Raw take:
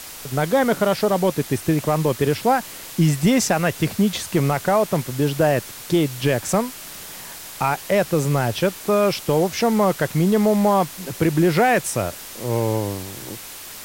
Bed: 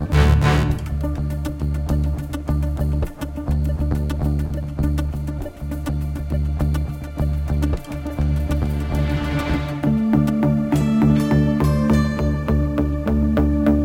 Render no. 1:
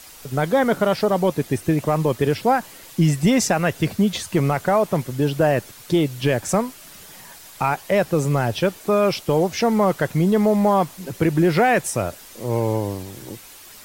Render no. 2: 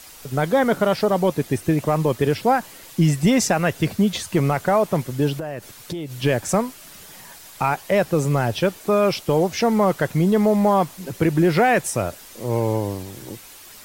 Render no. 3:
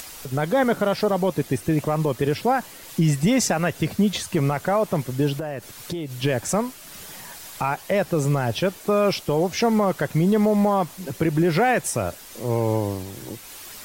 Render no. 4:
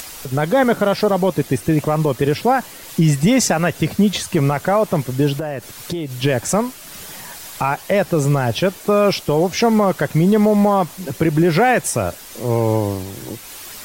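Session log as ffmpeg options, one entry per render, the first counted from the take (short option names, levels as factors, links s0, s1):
-af "afftdn=nr=8:nf=-37"
-filter_complex "[0:a]asettb=1/sr,asplit=3[s0][s1][s2];[s0]atrim=end=5.374[s3];[s1]atrim=start=5.37:end=6.18,asetpts=PTS-STARTPTS,afade=t=in:d=0.004:c=qsin,afade=t=out:st=0.806:d=0.004:c=qsin,acompressor=threshold=0.0562:ratio=12:attack=3.2:release=140:knee=1:detection=peak[s4];[s2]atrim=start=6.176[s5];[s3][s4]acrossfade=d=0.004:c1=hsin:c2=qsin[s6];[s6][s5]acrossfade=d=0.004:c1=qsin:c2=hsin"
-af "alimiter=limit=0.266:level=0:latency=1:release=85,acompressor=mode=upward:threshold=0.0224:ratio=2.5"
-af "volume=1.78"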